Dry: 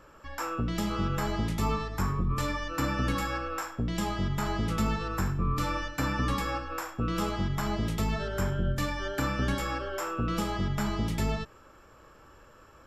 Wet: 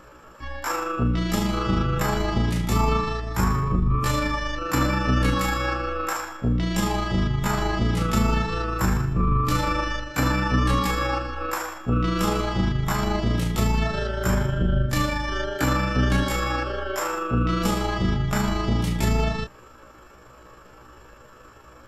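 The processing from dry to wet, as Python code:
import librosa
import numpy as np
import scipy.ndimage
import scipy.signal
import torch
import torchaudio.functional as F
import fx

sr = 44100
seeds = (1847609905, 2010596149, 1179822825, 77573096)

y = fx.stretch_grains(x, sr, factor=1.7, grain_ms=79.0)
y = y * librosa.db_to_amplitude(8.0)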